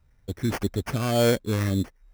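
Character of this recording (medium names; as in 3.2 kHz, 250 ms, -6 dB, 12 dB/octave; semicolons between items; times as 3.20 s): phasing stages 2, 1.7 Hz, lowest notch 710–4000 Hz; aliases and images of a low sample rate 3.8 kHz, jitter 0%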